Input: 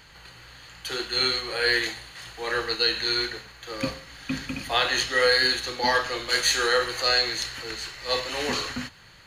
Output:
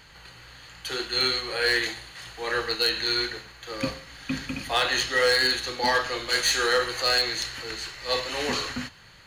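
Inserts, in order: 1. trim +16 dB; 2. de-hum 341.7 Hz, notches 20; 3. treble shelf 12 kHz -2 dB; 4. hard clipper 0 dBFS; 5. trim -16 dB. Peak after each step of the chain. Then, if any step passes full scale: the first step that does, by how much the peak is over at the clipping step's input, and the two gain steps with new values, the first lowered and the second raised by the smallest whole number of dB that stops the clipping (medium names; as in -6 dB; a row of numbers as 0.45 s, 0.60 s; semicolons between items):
+7.0 dBFS, +7.0 dBFS, +7.0 dBFS, 0.0 dBFS, -16.0 dBFS; step 1, 7.0 dB; step 1 +9 dB, step 5 -9 dB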